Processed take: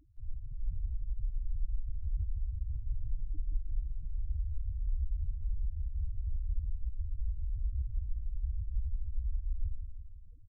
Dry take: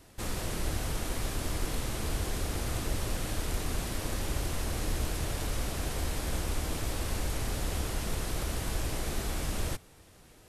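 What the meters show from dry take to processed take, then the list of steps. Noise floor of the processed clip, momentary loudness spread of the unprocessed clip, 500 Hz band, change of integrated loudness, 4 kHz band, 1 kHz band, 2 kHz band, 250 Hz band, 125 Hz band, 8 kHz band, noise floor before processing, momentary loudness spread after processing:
-47 dBFS, 1 LU, under -40 dB, -5.5 dB, under -40 dB, under -40 dB, under -40 dB, -28.0 dB, -3.5 dB, under -40 dB, -56 dBFS, 4 LU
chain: loudest bins only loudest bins 2; feedback delay 168 ms, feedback 58%, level -9 dB; trim +2 dB

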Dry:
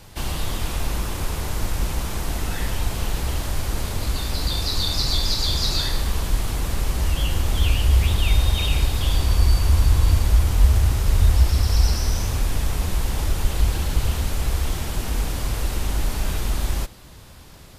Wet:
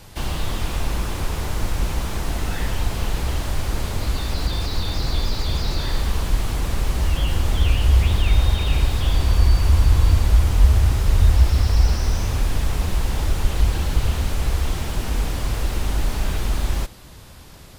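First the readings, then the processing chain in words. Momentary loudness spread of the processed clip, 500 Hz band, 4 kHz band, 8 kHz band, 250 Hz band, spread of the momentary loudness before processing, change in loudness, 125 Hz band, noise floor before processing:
9 LU, +1.5 dB, -3.5 dB, -3.0 dB, +1.5 dB, 9 LU, +1.0 dB, +1.5 dB, -43 dBFS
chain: slew-rate limiter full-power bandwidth 88 Hz; trim +1.5 dB

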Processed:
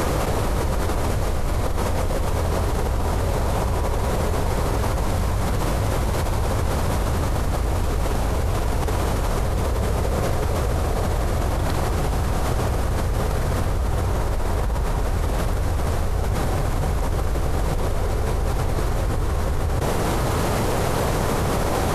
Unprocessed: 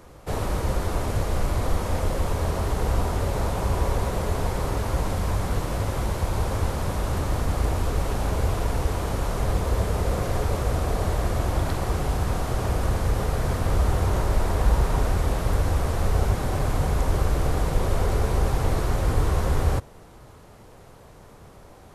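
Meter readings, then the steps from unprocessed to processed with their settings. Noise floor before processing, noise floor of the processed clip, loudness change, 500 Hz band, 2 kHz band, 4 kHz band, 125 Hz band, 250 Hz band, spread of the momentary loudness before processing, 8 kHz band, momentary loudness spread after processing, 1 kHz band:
-48 dBFS, -23 dBFS, +2.0 dB, +3.5 dB, +4.0 dB, +4.0 dB, +2.0 dB, +3.5 dB, 3 LU, +4.0 dB, 2 LU, +3.5 dB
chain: level flattener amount 100%; trim -7 dB

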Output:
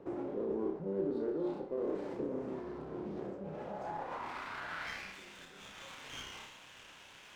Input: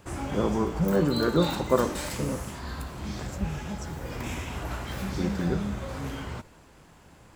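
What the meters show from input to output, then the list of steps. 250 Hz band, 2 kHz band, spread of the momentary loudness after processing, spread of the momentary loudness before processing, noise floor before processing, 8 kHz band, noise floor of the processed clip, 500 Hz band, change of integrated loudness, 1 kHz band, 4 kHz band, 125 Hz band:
-11.5 dB, -7.5 dB, 15 LU, 12 LU, -54 dBFS, -16.5 dB, -56 dBFS, -8.0 dB, -10.5 dB, -9.5 dB, -11.5 dB, -20.5 dB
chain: low-pass 6.4 kHz; flutter echo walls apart 5.3 m, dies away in 0.4 s; reverse; compression 12:1, threshold -38 dBFS, peak gain reduction 23.5 dB; reverse; peak limiter -34.5 dBFS, peak gain reduction 6.5 dB; band-pass sweep 390 Hz -> 3.2 kHz, 3.31–5.32 s; high-pass 92 Hz; sliding maximum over 5 samples; trim +12.5 dB

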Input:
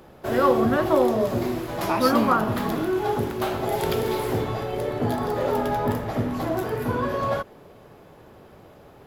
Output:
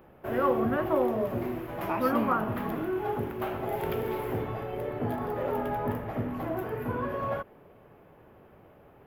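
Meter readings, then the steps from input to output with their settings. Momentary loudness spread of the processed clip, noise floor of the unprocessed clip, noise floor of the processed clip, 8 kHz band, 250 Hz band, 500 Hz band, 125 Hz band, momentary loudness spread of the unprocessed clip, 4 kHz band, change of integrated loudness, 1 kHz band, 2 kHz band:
7 LU, -49 dBFS, -56 dBFS, under -15 dB, -6.5 dB, -6.5 dB, -6.5 dB, 7 LU, -14.0 dB, -6.5 dB, -6.5 dB, -6.5 dB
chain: high-order bell 6 kHz -14.5 dB; trim -6.5 dB

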